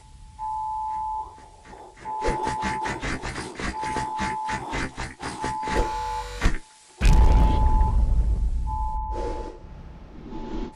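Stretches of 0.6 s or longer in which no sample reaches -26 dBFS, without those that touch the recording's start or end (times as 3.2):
1.22–2.08
9.5–10.35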